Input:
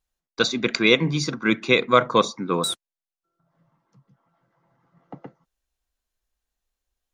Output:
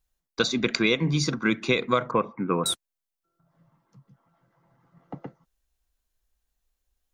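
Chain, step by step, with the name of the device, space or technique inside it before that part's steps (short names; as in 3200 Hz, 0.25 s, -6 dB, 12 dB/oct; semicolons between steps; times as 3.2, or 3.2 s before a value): 2.11–2.66 elliptic low-pass 2600 Hz, stop band 40 dB; ASMR close-microphone chain (low shelf 140 Hz +6.5 dB; compressor 5:1, threshold -19 dBFS, peak gain reduction 9.5 dB; high shelf 9200 Hz +5.5 dB)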